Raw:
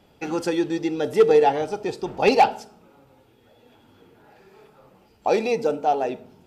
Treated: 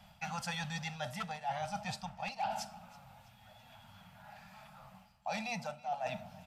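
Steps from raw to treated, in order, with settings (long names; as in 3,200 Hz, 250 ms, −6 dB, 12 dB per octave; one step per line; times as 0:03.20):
elliptic band-stop filter 200–660 Hz, stop band 60 dB
reversed playback
downward compressor 8 to 1, threshold −37 dBFS, peak gain reduction 25 dB
reversed playback
repeating echo 328 ms, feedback 47%, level −21.5 dB
level +1.5 dB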